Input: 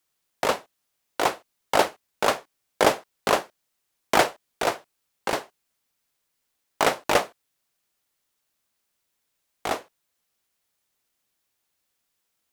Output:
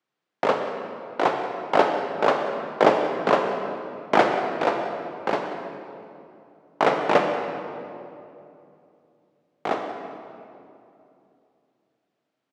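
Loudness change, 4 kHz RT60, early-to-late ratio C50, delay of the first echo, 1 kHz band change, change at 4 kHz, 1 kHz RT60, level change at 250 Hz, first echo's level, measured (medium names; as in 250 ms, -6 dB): +1.5 dB, 1.7 s, 4.5 dB, 183 ms, +3.0 dB, -5.0 dB, 2.6 s, +5.0 dB, -15.5 dB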